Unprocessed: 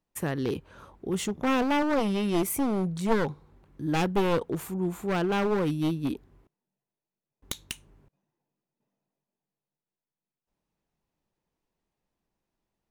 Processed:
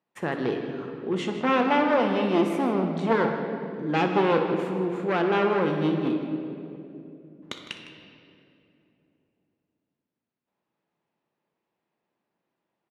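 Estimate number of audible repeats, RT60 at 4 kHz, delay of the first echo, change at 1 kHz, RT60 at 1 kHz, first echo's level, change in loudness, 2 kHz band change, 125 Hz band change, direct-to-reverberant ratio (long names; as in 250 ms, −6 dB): 2, 1.8 s, 61 ms, +5.5 dB, 2.3 s, −15.5 dB, +3.0 dB, +5.0 dB, −0.5 dB, 3.0 dB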